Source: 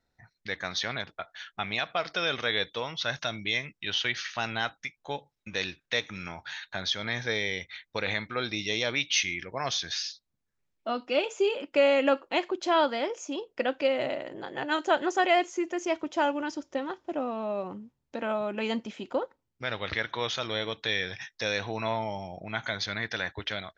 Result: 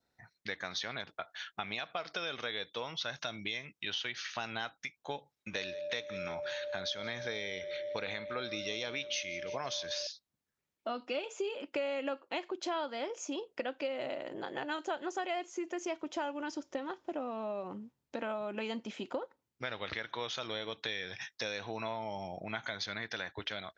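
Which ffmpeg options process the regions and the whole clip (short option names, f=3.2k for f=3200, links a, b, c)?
-filter_complex "[0:a]asettb=1/sr,asplit=3[a][b][c];[a]atrim=end=5.554[d];[b]atrim=start=5.55:end=10.07,asetpts=PTS-STARTPTS,afade=t=in:d=0.004:c=qsin,afade=t=out:st=4.516:d=0.004:c=qsin,aeval=exprs='val(0)+0.0178*sin(2*PI*590*n/s)':c=same,asplit=5[e][f][g][h][i];[f]adelay=171,afreqshift=-33,volume=-21dB[j];[g]adelay=342,afreqshift=-66,volume=-25.9dB[k];[h]adelay=513,afreqshift=-99,volume=-30.8dB[l];[i]adelay=684,afreqshift=-132,volume=-35.6dB[m];[e][j][k][l][m]amix=inputs=5:normalize=0,atrim=end_sample=199332[n];[c]atrim=start=10.066[o];[d][n]acrossfade=d=0.004:c1=hsin:c2=qsin[p];[p][o]acrossfade=d=0.004:c1=qsin:c2=hsin,highpass=f=150:p=1,acompressor=threshold=-35dB:ratio=4,adynamicequalizer=threshold=0.00158:dfrequency=1900:dqfactor=3.9:tfrequency=1900:tqfactor=3.9:attack=5:release=100:ratio=0.375:range=1.5:mode=cutabove:tftype=bell"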